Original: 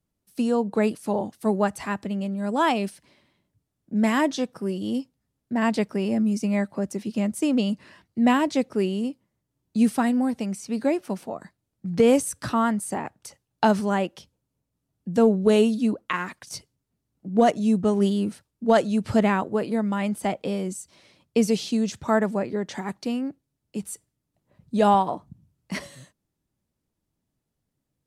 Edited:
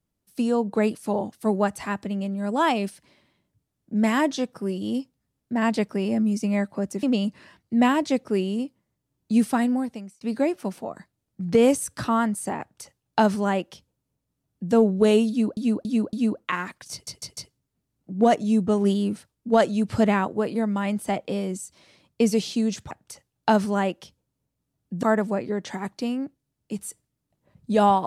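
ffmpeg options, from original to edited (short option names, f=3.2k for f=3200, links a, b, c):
-filter_complex "[0:a]asplit=11[a][b][c][d][e][f][g][h][i][j][k];[a]atrim=end=7.032[l];[b]atrim=start=7.478:end=10.66,asetpts=PTS-STARTPTS,afade=t=out:st=2.652:d=0.53[m];[c]atrim=start=10.66:end=16.022,asetpts=PTS-STARTPTS,afade=t=in:d=0.004:c=hsin[n];[d]atrim=start=15.738:end=16.022[o];[e]atrim=start=15.738:end=16.022[p];[f]atrim=start=15.738:end=16.682[q];[g]atrim=start=16.528:end=16.682[r];[h]atrim=start=16.528:end=16.682[s];[i]atrim=start=16.528:end=22.072[t];[j]atrim=start=13.058:end=15.182[u];[k]atrim=start=22.068[v];[m][n]concat=n=2:v=0:a=1[w];[l][w]acrossfade=d=0.004:c1=hsin:c2=hsin[x];[x][o]acrossfade=d=0.004:c1=hsin:c2=hsin[y];[y][p]acrossfade=d=0.004:c1=hsin:c2=hsin[z];[z][q]acrossfade=d=0.004:c1=hsin:c2=hsin[aa];[aa][r]acrossfade=d=0.004:c1=hsin:c2=hsin[ab];[ab][s]acrossfade=d=0.004:c1=hsin:c2=hsin[ac];[ac][t]acrossfade=d=0.004:c1=hsin:c2=hsin[ad];[ad][u]acrossfade=d=0.004:c1=hsin:c2=hsin[ae];[ae][v]acrossfade=d=0.004:c1=hsin:c2=hsin"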